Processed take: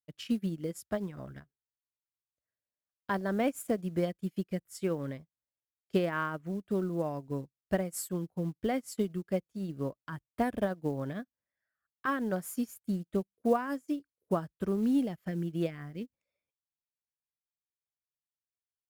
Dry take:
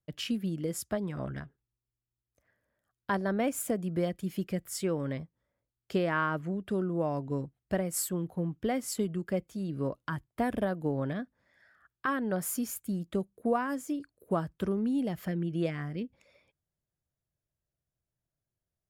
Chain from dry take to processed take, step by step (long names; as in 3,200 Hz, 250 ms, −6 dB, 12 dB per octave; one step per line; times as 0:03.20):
in parallel at +1 dB: brickwall limiter −27.5 dBFS, peak gain reduction 10 dB
on the sum: floating-point word with a short mantissa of 4 bits
expander for the loud parts 2.5 to 1, over −42 dBFS